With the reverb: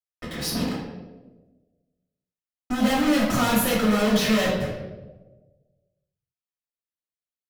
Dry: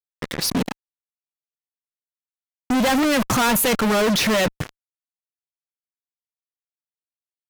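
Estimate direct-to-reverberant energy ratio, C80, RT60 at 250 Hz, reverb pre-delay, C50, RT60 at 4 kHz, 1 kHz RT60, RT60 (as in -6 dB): -8.0 dB, 4.5 dB, 1.5 s, 3 ms, 2.0 dB, 0.75 s, 1.0 s, 1.3 s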